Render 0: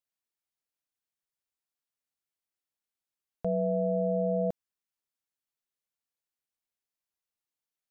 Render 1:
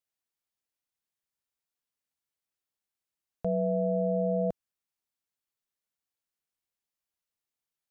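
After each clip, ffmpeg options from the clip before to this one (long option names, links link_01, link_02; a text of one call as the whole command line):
ffmpeg -i in.wav -af "equalizer=frequency=71:width_type=o:width=2:gain=2.5" out.wav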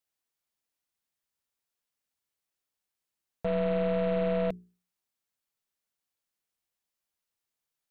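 ffmpeg -i in.wav -af "aeval=exprs='0.106*(cos(1*acos(clip(val(0)/0.106,-1,1)))-cos(1*PI/2))+0.0075*(cos(5*acos(clip(val(0)/0.106,-1,1)))-cos(5*PI/2))+0.00841*(cos(8*acos(clip(val(0)/0.106,-1,1)))-cos(8*PI/2))':channel_layout=same,bandreject=frequency=60:width_type=h:width=6,bandreject=frequency=120:width_type=h:width=6,bandreject=frequency=180:width_type=h:width=6,bandreject=frequency=240:width_type=h:width=6,bandreject=frequency=300:width_type=h:width=6,bandreject=frequency=360:width_type=h:width=6,bandreject=frequency=420:width_type=h:width=6" out.wav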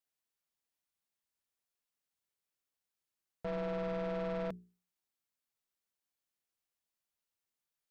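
ffmpeg -i in.wav -af "asoftclip=type=tanh:threshold=-29.5dB,volume=-4dB" out.wav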